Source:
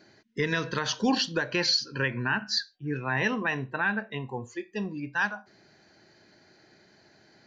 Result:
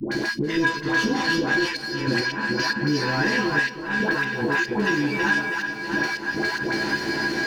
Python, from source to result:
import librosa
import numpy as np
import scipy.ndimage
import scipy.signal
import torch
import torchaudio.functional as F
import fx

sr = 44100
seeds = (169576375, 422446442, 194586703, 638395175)

y = fx.bin_compress(x, sr, power=0.6)
y = fx.comb_fb(y, sr, f0_hz=330.0, decay_s=0.21, harmonics='odd', damping=0.0, mix_pct=90)
y = fx.echo_thinned(y, sr, ms=324, feedback_pct=68, hz=190.0, wet_db=-5)
y = fx.leveller(y, sr, passes=2)
y = fx.low_shelf(y, sr, hz=250.0, db=9.0)
y = fx.doubler(y, sr, ms=14.0, db=-2.5)
y = fx.step_gate(y, sr, bpm=109, pattern='.x..x.xxxxxx..', floor_db=-12.0, edge_ms=4.5)
y = fx.bass_treble(y, sr, bass_db=-4, treble_db=-4)
y = fx.notch(y, sr, hz=940.0, q=22.0)
y = fx.dispersion(y, sr, late='highs', ms=117.0, hz=730.0)
y = fx.band_squash(y, sr, depth_pct=100)
y = F.gain(torch.from_numpy(y), 7.5).numpy()